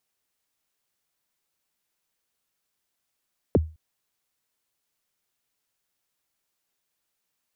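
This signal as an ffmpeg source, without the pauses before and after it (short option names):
-f lavfi -i "aevalsrc='0.251*pow(10,-3*t/0.31)*sin(2*PI*(590*0.028/log(79/590)*(exp(log(79/590)*min(t,0.028)/0.028)-1)+79*max(t-0.028,0)))':d=0.21:s=44100"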